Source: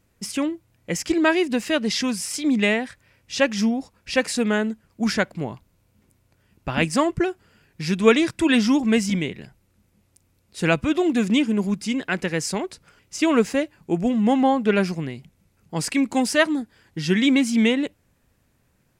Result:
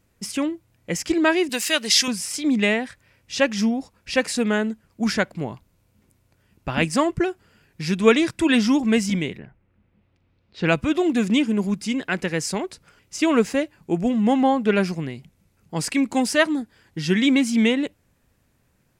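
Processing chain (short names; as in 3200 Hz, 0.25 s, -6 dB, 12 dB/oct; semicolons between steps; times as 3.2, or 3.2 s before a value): 1.49–2.08 tilt +4 dB/oct; 9.37–10.67 LPF 2200 Hz -> 4700 Hz 24 dB/oct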